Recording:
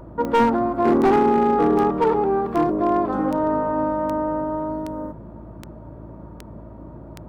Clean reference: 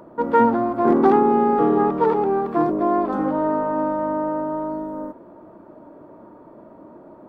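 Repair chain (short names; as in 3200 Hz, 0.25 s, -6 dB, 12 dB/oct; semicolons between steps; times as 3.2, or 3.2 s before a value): clip repair -11 dBFS; de-click; de-hum 55 Hz, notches 6; noise print and reduce 6 dB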